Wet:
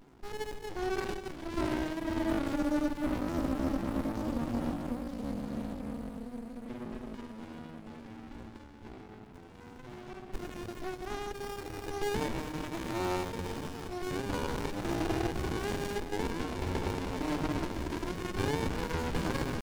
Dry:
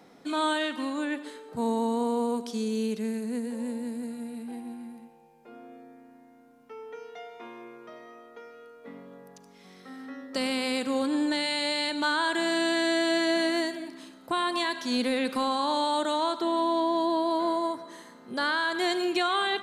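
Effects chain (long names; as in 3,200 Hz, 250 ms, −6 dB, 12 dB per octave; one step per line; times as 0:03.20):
delay with pitch and tempo change per echo 531 ms, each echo −2 semitones, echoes 3
pitch shifter +5.5 semitones
windowed peak hold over 65 samples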